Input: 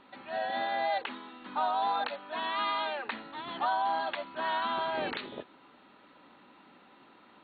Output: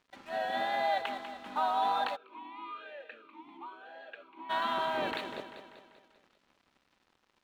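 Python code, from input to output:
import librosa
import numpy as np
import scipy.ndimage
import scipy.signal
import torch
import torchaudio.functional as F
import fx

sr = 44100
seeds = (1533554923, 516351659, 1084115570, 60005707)

y = fx.wow_flutter(x, sr, seeds[0], rate_hz=2.1, depth_cents=23.0)
y = np.sign(y) * np.maximum(np.abs(y) - 10.0 ** (-53.5 / 20.0), 0.0)
y = fx.echo_feedback(y, sr, ms=195, feedback_pct=52, wet_db=-10.0)
y = fx.vowel_sweep(y, sr, vowels='e-u', hz=1.0, at=(2.15, 4.49), fade=0.02)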